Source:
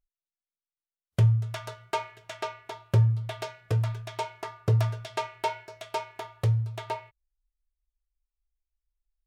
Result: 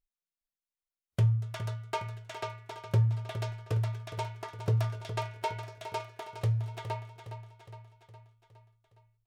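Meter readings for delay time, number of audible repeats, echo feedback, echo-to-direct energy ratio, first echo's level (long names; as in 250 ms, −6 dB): 413 ms, 5, 56%, −9.0 dB, −10.5 dB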